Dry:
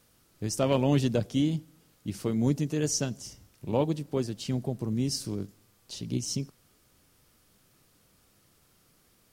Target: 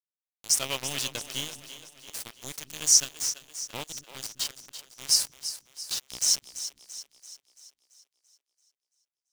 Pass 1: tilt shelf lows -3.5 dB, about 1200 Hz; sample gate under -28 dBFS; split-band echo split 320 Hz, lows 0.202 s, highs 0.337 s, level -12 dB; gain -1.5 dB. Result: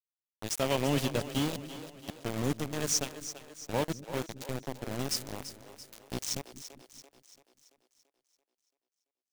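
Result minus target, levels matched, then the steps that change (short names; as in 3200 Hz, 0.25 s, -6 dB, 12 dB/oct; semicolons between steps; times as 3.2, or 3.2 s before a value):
1000 Hz band +12.5 dB
change: tilt shelf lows -15 dB, about 1200 Hz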